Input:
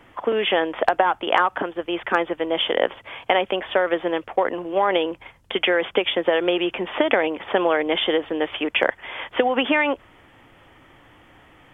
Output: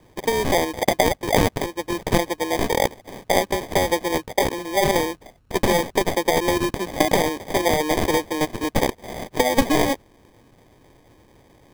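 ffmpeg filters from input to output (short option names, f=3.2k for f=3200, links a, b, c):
-filter_complex "[0:a]acrossover=split=150|520|1100[a][b][c][d];[c]acrusher=bits=6:mix=0:aa=0.000001[e];[d]aeval=exprs='0.422*(cos(1*acos(clip(val(0)/0.422,-1,1)))-cos(1*PI/2))+0.075*(cos(8*acos(clip(val(0)/0.422,-1,1)))-cos(8*PI/2))':c=same[f];[a][b][e][f]amix=inputs=4:normalize=0,acrusher=samples=32:mix=1:aa=0.000001"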